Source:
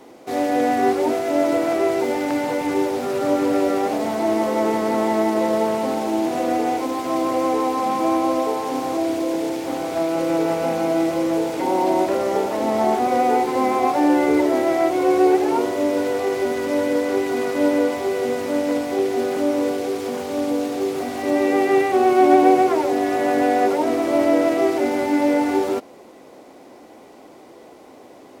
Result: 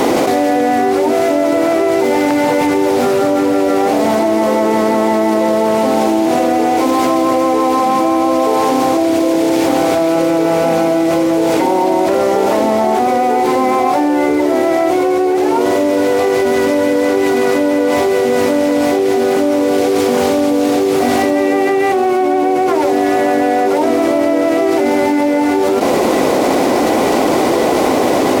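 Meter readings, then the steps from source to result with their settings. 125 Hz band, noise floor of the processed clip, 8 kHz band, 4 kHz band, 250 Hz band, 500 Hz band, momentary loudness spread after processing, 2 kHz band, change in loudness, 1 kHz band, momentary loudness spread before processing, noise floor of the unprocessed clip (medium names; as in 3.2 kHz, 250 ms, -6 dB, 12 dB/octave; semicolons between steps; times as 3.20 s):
+9.0 dB, -13 dBFS, +10.0 dB, +9.5 dB, +7.0 dB, +7.5 dB, 0 LU, +8.0 dB, +7.0 dB, +7.0 dB, 6 LU, -45 dBFS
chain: level flattener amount 100%; trim -2.5 dB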